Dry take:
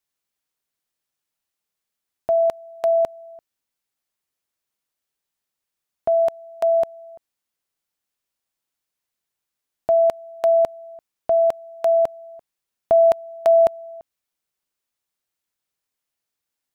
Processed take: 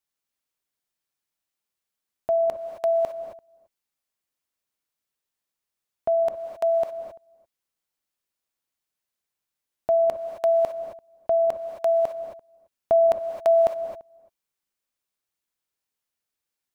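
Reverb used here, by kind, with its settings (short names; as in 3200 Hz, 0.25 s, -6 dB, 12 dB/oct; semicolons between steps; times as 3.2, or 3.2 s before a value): non-linear reverb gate 0.29 s rising, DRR 6 dB; gain -3.5 dB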